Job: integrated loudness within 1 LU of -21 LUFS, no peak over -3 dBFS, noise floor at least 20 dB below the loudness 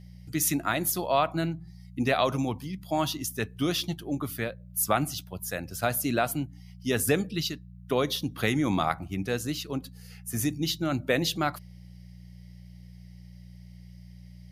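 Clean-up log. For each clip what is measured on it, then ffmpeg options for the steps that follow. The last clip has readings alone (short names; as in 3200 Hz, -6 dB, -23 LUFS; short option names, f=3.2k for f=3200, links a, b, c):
hum 60 Hz; harmonics up to 180 Hz; hum level -44 dBFS; loudness -29.0 LUFS; peak -10.5 dBFS; loudness target -21.0 LUFS
-> -af "bandreject=f=60:t=h:w=4,bandreject=f=120:t=h:w=4,bandreject=f=180:t=h:w=4"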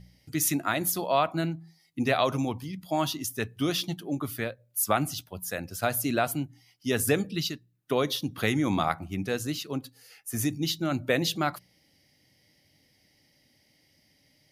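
hum none; loudness -29.0 LUFS; peak -10.0 dBFS; loudness target -21.0 LUFS
-> -af "volume=8dB,alimiter=limit=-3dB:level=0:latency=1"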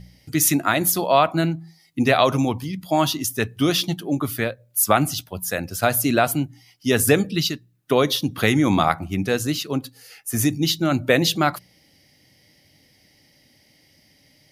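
loudness -21.0 LUFS; peak -3.0 dBFS; noise floor -58 dBFS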